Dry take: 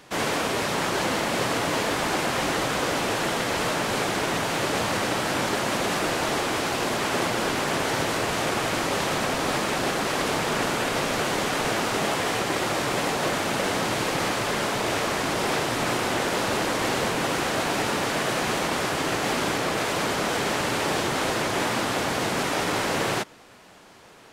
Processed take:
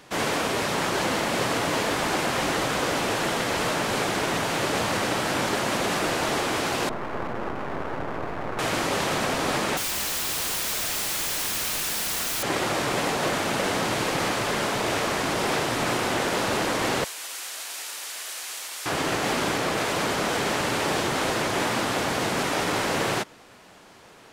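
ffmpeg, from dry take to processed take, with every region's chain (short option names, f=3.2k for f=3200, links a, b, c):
-filter_complex "[0:a]asettb=1/sr,asplit=3[a][b][c];[a]atrim=end=6.894[d];[b]atrim=start=6.89:end=8.59,asetpts=PTS-STARTPTS,afade=t=in:d=0.004:c=qsin,afade=t=out:st=1.696:d=0.004:c=qsin,lowpass=f=1.4k:w=0.5412,lowpass=f=1.4k:w=1.3066,aeval=exprs='max(val(0),0)':c=same[e];[c]atrim=start=8.586[f];[d][e]acrossfade=d=0.004:c1=hsin:c2=qsin[g];[g][f]acrossfade=d=0.004:c1=qsin:c2=hsin,asettb=1/sr,asplit=3[h][i][j];[h]atrim=end=9.774[k];[i]atrim=start=9.77:end=12.43,asetpts=PTS-STARTPTS,afade=t=in:d=0.004:c=qsin,afade=t=out:st=2.656:d=0.004:c=qsin,tiltshelf=f=900:g=-5.5,aeval=exprs='(mod(14.1*val(0)+1,2)-1)/14.1':c=same[l];[j]atrim=start=12.426[m];[k][l]acrossfade=d=0.004:c1=hsin:c2=qsin[n];[n][m]acrossfade=d=0.004:c1=qsin:c2=hsin,asettb=1/sr,asplit=3[o][p][q];[o]atrim=end=17.044[r];[p]atrim=start=17.04:end=18.86,asetpts=PTS-STARTPTS,afade=t=in:d=0.004:c=qsin,afade=t=out:st=1.816:d=0.004:c=qsin,highpass=340,aderivative[s];[q]atrim=start=18.856[t];[r][s]acrossfade=d=0.004:c1=hsin:c2=qsin[u];[u][t]acrossfade=d=0.004:c1=qsin:c2=hsin"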